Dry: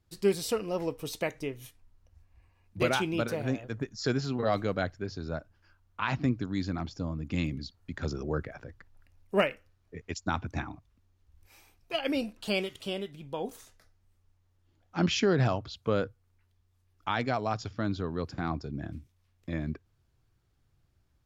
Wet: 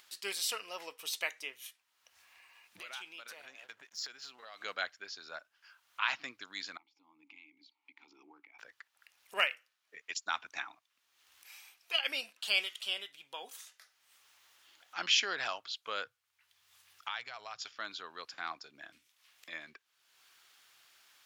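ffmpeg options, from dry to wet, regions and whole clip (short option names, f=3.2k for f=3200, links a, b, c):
-filter_complex "[0:a]asettb=1/sr,asplit=3[a][b][c];[a]atrim=end=2.794[d];[b]atrim=start=2.79:end=4.61,asetpts=PTS-STARTPTS,afade=t=in:d=0.004:c=qsin,afade=t=out:st=1.816:d=0.004:c=qsin,aeval=exprs='sgn(val(0))*max(abs(val(0))-0.00119,0)':c=same,acompressor=threshold=-37dB:ratio=12:attack=3.2:release=140:knee=1:detection=peak[e];[c]atrim=start=4.606[f];[d][e]acrossfade=d=0.004:c1=hsin:c2=qsin[g];[g][f]acrossfade=d=0.004:c1=qsin:c2=hsin,asettb=1/sr,asplit=3[h][i][j];[h]atrim=end=6.774[k];[i]atrim=start=6.77:end=8.59,asetpts=PTS-STARTPTS,afade=t=in:d=0.004:c=qsin,afade=t=out:st=1.816:d=0.004:c=qsin,acompressor=threshold=-45dB:ratio=2:attack=3.2:release=140:knee=1:detection=peak,asplit=3[l][m][n];[l]bandpass=f=300:t=q:w=8,volume=0dB[o];[m]bandpass=f=870:t=q:w=8,volume=-6dB[p];[n]bandpass=f=2.24k:t=q:w=8,volume=-9dB[q];[o][p][q]amix=inputs=3:normalize=0[r];[j]atrim=start=8.586[s];[k][r]acrossfade=d=0.004:c1=hsin:c2=qsin[t];[t][s]acrossfade=d=0.004:c1=qsin:c2=hsin,asettb=1/sr,asplit=3[u][v][w];[u]atrim=end=16.064[x];[v]atrim=start=16.06:end=17.62,asetpts=PTS-STARTPTS,afade=t=in:d=0.004:c=qsin,afade=t=out:st=1.556:d=0.004:c=qsin,lowshelf=f=190:t=q:w=3:g=7.5,acompressor=threshold=-30dB:ratio=6:attack=3.2:release=140:knee=1:detection=peak[y];[w]atrim=start=17.616[z];[x][y]acrossfade=d=0.004:c1=hsin:c2=qsin[aa];[aa][z]acrossfade=d=0.004:c1=qsin:c2=hsin,highpass=1.4k,equalizer=f=3.1k:t=o:w=0.66:g=3.5,acompressor=mode=upward:threshold=-50dB:ratio=2.5,volume=2dB"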